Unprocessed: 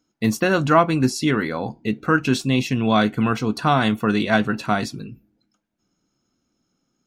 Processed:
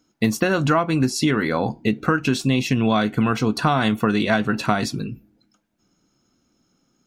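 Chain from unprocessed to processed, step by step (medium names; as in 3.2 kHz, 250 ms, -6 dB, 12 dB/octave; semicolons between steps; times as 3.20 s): compression 10:1, threshold -21 dBFS, peak gain reduction 12 dB; trim +6 dB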